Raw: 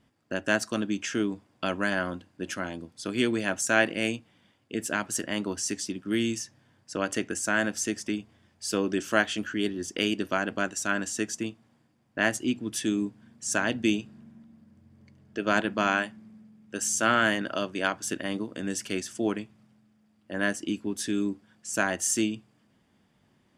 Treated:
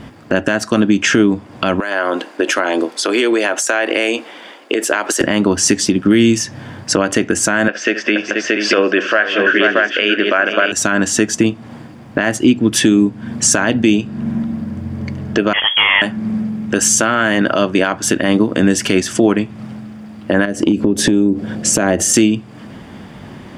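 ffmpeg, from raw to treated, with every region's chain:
-filter_complex "[0:a]asettb=1/sr,asplit=3[s0][s1][s2];[s0]atrim=end=1.804[s3];[s1]atrim=start=1.8:end=5.21,asetpts=PTS-STARTPTS,afade=t=in:d=0.004:c=qsin,afade=t=out:st=3.406:d=0.004:c=qsin,highpass=f=350:w=0.5412,highpass=f=350:w=1.3066,acompressor=threshold=0.00891:ratio=6:attack=3.2:release=140:knee=1:detection=peak[s4];[s2]atrim=start=5.206[s5];[s3][s4]acrossfade=d=0.004:c1=hsin:c2=qsin[s6];[s6][s5]acrossfade=d=0.004:c1=qsin:c2=hsin,asettb=1/sr,asplit=3[s7][s8][s9];[s7]atrim=end=7.684[s10];[s8]atrim=start=7.68:end=10.72,asetpts=PTS-STARTPTS,afade=t=in:d=0.004:c=qsin,afade=t=out:st=3.036:d=0.004:c=qsin,highpass=490,equalizer=f=580:t=q:w=4:g=5,equalizer=f=870:t=q:w=4:g=-9,equalizer=f=1600:t=q:w=4:g=6,equalizer=f=2600:t=q:w=4:g=4,equalizer=f=4000:t=q:w=4:g=-8,lowpass=f=4300:w=0.5412,lowpass=f=4300:w=1.3066,aecho=1:1:70|199|478|628:0.133|0.106|0.266|0.473,atrim=end_sample=134064[s11];[s9]atrim=start=10.716[s12];[s10][s11]acrossfade=d=0.004:c1=hsin:c2=qsin[s13];[s13][s12]acrossfade=d=0.004:c1=qsin:c2=hsin,asettb=1/sr,asplit=3[s14][s15][s16];[s14]atrim=end=15.534[s17];[s15]atrim=start=15.53:end=16.02,asetpts=PTS-STARTPTS,afade=t=in:d=0.004:c=qsin,afade=t=out:st=0.486:d=0.004:c=qsin,asoftclip=type=hard:threshold=0.0668,lowpass=f=3000:t=q:w=0.5098,lowpass=f=3000:t=q:w=0.6013,lowpass=f=3000:t=q:w=0.9,lowpass=f=3000:t=q:w=2.563,afreqshift=-3500[s18];[s16]atrim=start=16.016[s19];[s17][s18]acrossfade=d=0.004:c1=hsin:c2=qsin[s20];[s20][s19]acrossfade=d=0.004:c1=qsin:c2=hsin,asettb=1/sr,asplit=3[s21][s22][s23];[s21]atrim=end=20.454[s24];[s22]atrim=start=20.45:end=22.14,asetpts=PTS-STARTPTS,afade=t=in:d=0.004:c=qsin,afade=t=out:st=1.686:d=0.004:c=qsin,lowshelf=f=720:t=q:w=1.5:g=7,acompressor=threshold=0.0224:ratio=6:attack=3.2:release=140:knee=1:detection=peak[s25];[s23]atrim=start=22.136[s26];[s24][s25]acrossfade=d=0.004:c1=hsin:c2=qsin[s27];[s27][s26]acrossfade=d=0.004:c1=qsin:c2=hsin,highshelf=f=4000:g=-10,acompressor=threshold=0.00708:ratio=4,alimiter=level_in=47.3:limit=0.891:release=50:level=0:latency=1,volume=0.891"

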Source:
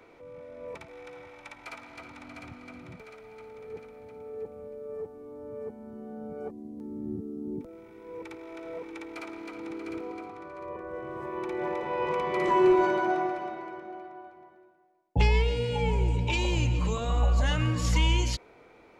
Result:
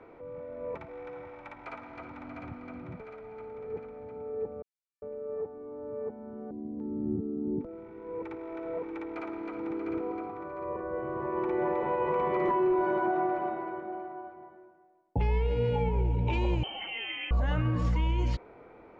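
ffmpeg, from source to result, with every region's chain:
-filter_complex "[0:a]asettb=1/sr,asplit=3[s0][s1][s2];[s0]atrim=end=4.624[s3];[s1]atrim=start=4.62:end=6.51,asetpts=PTS-STARTPTS,afade=t=in:d=0.004:c=qsin,afade=t=out:st=1.886:d=0.004:c=qsin,lowshelf=f=240:g=-6.5,acrossover=split=5500[s4][s5];[s4]adelay=400[s6];[s6][s5]amix=inputs=2:normalize=0,atrim=end_sample=83349[s7];[s2]atrim=start=6.506[s8];[s3][s7]acrossfade=d=0.004:c1=hsin:c2=qsin[s9];[s9][s8]acrossfade=d=0.004:c1=qsin:c2=hsin,asettb=1/sr,asplit=3[s10][s11][s12];[s10]atrim=end=16.634[s13];[s11]atrim=start=16.63:end=17.31,asetpts=PTS-STARTPTS,afade=t=in:d=0.004:c=qsin,afade=t=out:st=0.676:d=0.004:c=qsin,bandreject=f=60:t=h:w=6,bandreject=f=120:t=h:w=6,bandreject=f=180:t=h:w=6,bandreject=f=240:t=h:w=6,bandreject=f=300:t=h:w=6,bandreject=f=360:t=h:w=6,bandreject=f=420:t=h:w=6,bandreject=f=480:t=h:w=6,lowpass=f=2700:t=q:w=0.5098,lowpass=f=2700:t=q:w=0.6013,lowpass=f=2700:t=q:w=0.9,lowpass=f=2700:t=q:w=2.563,afreqshift=-3200[s14];[s12]atrim=start=17.306[s15];[s13][s14]acrossfade=d=0.004:c1=hsin:c2=qsin[s16];[s16][s15]acrossfade=d=0.004:c1=qsin:c2=hsin,lowpass=1400,aemphasis=mode=production:type=cd,alimiter=limit=0.0631:level=0:latency=1:release=101,volume=1.58"

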